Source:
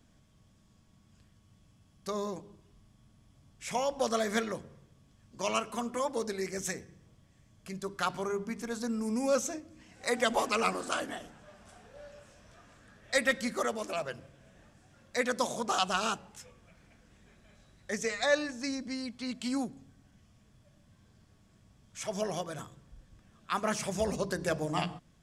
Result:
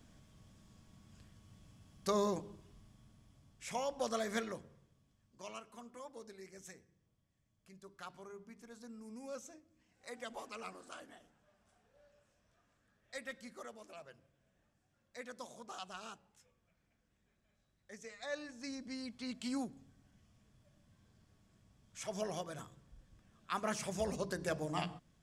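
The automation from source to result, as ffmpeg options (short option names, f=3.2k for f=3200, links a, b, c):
-af "volume=14dB,afade=t=out:st=2.42:d=1.33:silence=0.354813,afade=t=out:st=4.48:d=1.08:silence=0.281838,afade=t=in:st=18.18:d=0.94:silence=0.251189"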